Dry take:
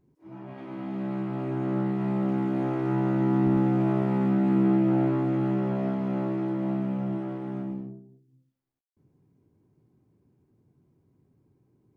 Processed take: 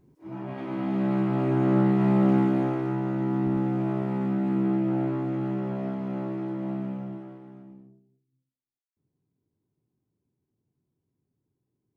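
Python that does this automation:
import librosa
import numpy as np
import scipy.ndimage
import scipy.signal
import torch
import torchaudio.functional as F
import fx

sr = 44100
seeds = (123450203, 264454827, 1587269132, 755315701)

y = fx.gain(x, sr, db=fx.line((2.37, 6.0), (2.99, -3.0), (6.87, -3.0), (7.6, -14.0)))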